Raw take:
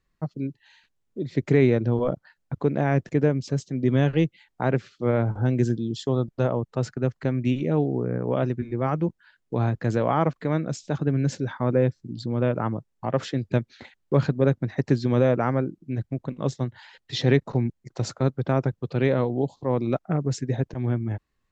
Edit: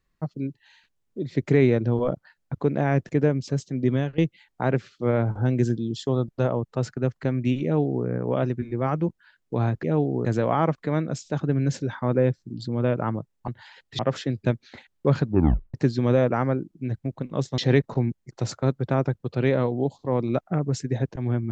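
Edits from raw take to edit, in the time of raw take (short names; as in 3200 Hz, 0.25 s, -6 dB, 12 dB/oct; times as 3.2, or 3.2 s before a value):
3.87–4.18 fade out, to -18.5 dB
7.63–8.05 copy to 9.83
14.3 tape stop 0.51 s
16.65–17.16 move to 13.06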